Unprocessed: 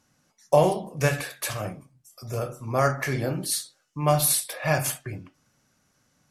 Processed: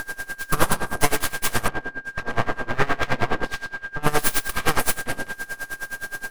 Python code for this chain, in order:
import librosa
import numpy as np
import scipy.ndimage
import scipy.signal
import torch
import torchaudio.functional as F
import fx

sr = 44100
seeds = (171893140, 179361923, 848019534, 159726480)

y = fx.bin_compress(x, sr, power=0.4)
y = fx.lowpass(y, sr, hz=2500.0, slope=12, at=(1.68, 4.03))
y = np.abs(y)
y = y + 10.0 ** (-30.0 / 20.0) * np.sin(2.0 * np.pi * 1600.0 * np.arange(len(y)) / sr)
y = y * 10.0 ** (-22 * (0.5 - 0.5 * np.cos(2.0 * np.pi * 9.6 * np.arange(len(y)) / sr)) / 20.0)
y = y * librosa.db_to_amplitude(4.5)